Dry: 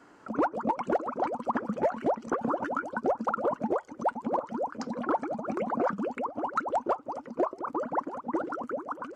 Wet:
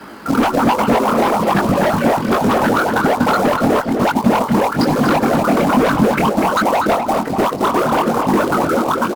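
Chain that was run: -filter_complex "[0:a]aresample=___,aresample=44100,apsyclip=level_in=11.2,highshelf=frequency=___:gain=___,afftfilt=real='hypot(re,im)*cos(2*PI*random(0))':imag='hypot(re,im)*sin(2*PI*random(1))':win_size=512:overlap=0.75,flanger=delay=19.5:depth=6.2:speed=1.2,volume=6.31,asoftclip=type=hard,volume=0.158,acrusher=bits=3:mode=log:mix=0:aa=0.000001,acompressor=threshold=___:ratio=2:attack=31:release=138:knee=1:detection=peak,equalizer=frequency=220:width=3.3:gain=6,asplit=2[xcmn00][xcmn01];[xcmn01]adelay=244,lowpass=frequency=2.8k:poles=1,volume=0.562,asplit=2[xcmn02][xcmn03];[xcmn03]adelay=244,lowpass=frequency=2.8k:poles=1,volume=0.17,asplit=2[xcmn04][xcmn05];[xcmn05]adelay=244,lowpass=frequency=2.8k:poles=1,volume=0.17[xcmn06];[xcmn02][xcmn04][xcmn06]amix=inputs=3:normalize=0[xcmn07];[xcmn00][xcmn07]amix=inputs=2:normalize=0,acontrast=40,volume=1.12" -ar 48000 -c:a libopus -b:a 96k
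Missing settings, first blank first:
11025, 2.7k, 8.5, 0.0708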